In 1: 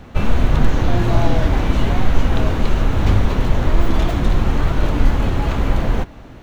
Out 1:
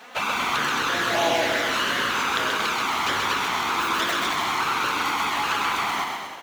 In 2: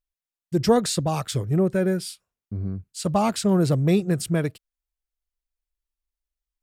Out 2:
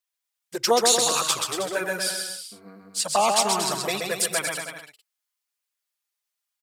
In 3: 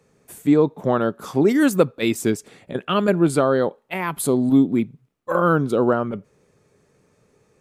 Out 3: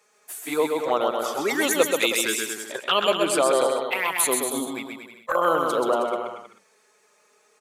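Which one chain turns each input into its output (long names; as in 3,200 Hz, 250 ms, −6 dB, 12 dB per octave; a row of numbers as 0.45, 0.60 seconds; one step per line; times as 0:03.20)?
high-pass filter 810 Hz 12 dB per octave
high-shelf EQ 3,900 Hz +2.5 dB
flanger swept by the level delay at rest 4.9 ms, full sweep at −23 dBFS
on a send: bouncing-ball delay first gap 130 ms, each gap 0.8×, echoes 5
on the sum: loudness normalisation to −23 LKFS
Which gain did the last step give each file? +7.5, +9.0, +6.5 decibels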